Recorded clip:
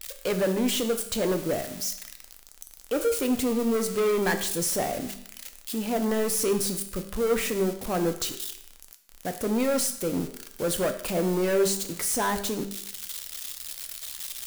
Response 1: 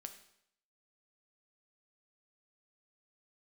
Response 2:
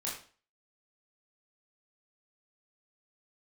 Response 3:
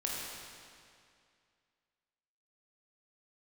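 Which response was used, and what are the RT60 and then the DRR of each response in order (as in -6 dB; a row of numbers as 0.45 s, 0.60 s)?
1; 0.70 s, 0.40 s, 2.3 s; 6.5 dB, -5.5 dB, -4.0 dB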